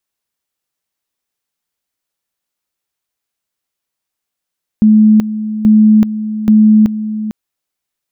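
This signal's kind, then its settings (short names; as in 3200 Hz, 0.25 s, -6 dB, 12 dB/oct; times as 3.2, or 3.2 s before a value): two-level tone 215 Hz -3.5 dBFS, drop 12.5 dB, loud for 0.38 s, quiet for 0.45 s, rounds 3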